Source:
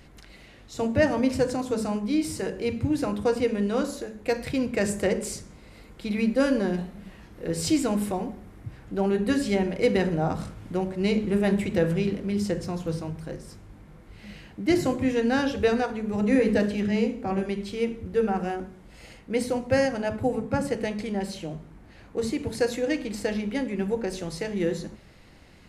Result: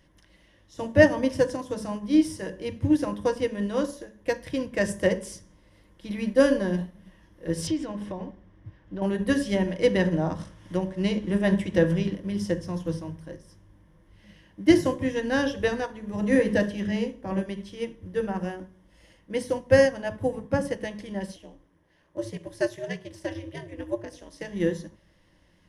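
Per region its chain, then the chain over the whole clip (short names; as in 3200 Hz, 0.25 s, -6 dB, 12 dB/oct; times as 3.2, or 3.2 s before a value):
7.67–9.02 LPF 4400 Hz + compressor, threshold -25 dBFS
9.68–12.15 LPF 9400 Hz + notches 50/100/150 Hz + mismatched tape noise reduction encoder only
21.36–24.41 bell 75 Hz -14.5 dB 1.6 oct + ring modulator 120 Hz
whole clip: ripple EQ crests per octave 1.2, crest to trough 9 dB; upward expander 1.5:1, over -41 dBFS; gain +3 dB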